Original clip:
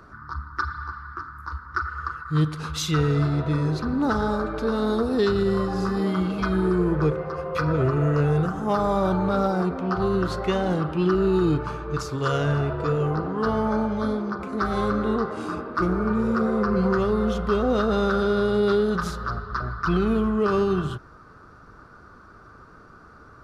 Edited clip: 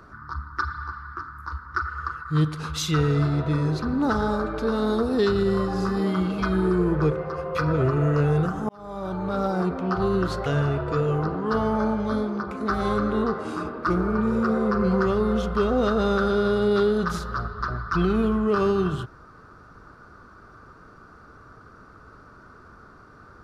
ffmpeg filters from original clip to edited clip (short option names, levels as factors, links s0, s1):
-filter_complex "[0:a]asplit=3[s0][s1][s2];[s0]atrim=end=8.69,asetpts=PTS-STARTPTS,afade=t=out:st=8.686:d=0.004:c=hsin[s3];[s1]atrim=start=8.69:end=10.462,asetpts=PTS-STARTPTS,afade=t=in:d=1[s4];[s2]atrim=start=12.378[s5];[s3][s4]concat=n=2:v=0:a=1[s6];[s6][s5]acrossfade=d=0.004:c1=hsin:c2=hsin"